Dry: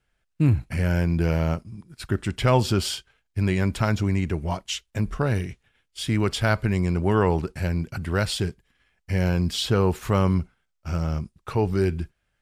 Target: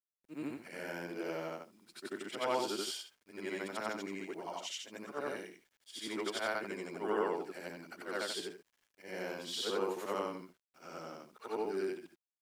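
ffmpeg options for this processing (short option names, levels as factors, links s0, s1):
-af "afftfilt=real='re':imag='-im':win_size=8192:overlap=0.75,highpass=f=290:w=0.5412,highpass=f=290:w=1.3066,bandreject=f=2600:w=19,acrusher=bits=10:mix=0:aa=0.000001,volume=0.501"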